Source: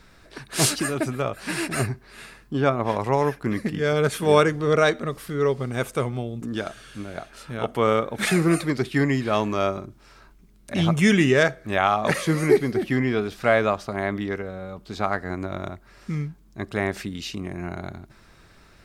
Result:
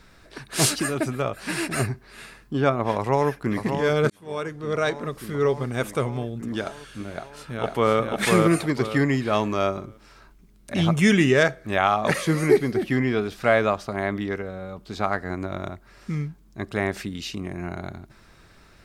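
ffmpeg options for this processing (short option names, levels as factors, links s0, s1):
-filter_complex "[0:a]asplit=2[s0][s1];[s1]afade=t=in:st=2.97:d=0.01,afade=t=out:st=3.58:d=0.01,aecho=0:1:590|1180|1770|2360|2950|3540|4130|4720|5310|5900|6490:0.446684|0.312679|0.218875|0.153212|0.107249|0.0750741|0.0525519|0.0367863|0.0257504|0.0180253|0.0126177[s2];[s0][s2]amix=inputs=2:normalize=0,asplit=2[s3][s4];[s4]afade=t=in:st=7.13:d=0.01,afade=t=out:st=7.97:d=0.01,aecho=0:1:500|1000|1500|2000:0.841395|0.252419|0.0757256|0.0227177[s5];[s3][s5]amix=inputs=2:normalize=0,asplit=2[s6][s7];[s6]atrim=end=4.1,asetpts=PTS-STARTPTS,afade=t=out:st=4.096:d=0.004:c=hsin[s8];[s7]atrim=start=4.1,asetpts=PTS-STARTPTS,afade=t=in:d=1.31[s9];[s8][s9]concat=n=2:v=0:a=1"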